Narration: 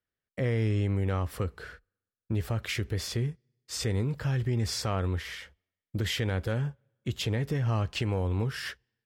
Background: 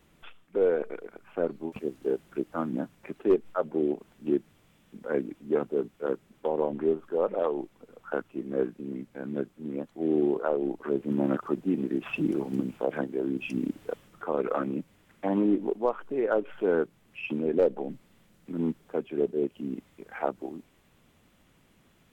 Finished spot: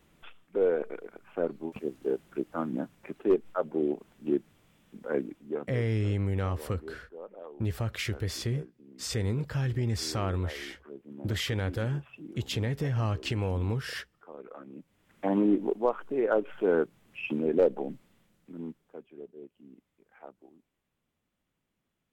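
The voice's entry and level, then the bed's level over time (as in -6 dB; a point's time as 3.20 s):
5.30 s, -1.0 dB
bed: 5.24 s -1.5 dB
6.05 s -17.5 dB
14.64 s -17.5 dB
15.24 s 0 dB
17.82 s 0 dB
19.28 s -19 dB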